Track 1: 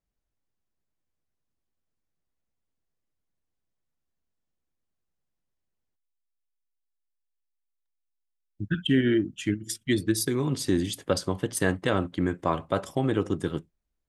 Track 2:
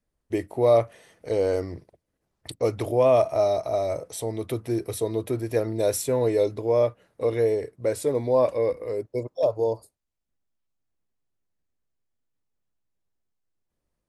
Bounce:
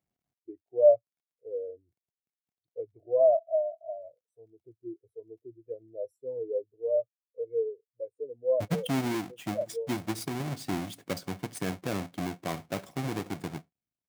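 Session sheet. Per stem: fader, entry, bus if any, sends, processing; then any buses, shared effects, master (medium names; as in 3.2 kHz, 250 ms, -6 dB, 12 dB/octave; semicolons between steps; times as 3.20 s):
8.38 s -3.5 dB -> 8.93 s -13.5 dB, 0.00 s, no send, square wave that keeps the level; Bessel high-pass 180 Hz, order 2; tone controls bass +11 dB, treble 0 dB
-2.0 dB, 0.15 s, no send, spectral contrast expander 2.5:1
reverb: none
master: bass shelf 100 Hz -7.5 dB; small resonant body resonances 720/2200 Hz, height 9 dB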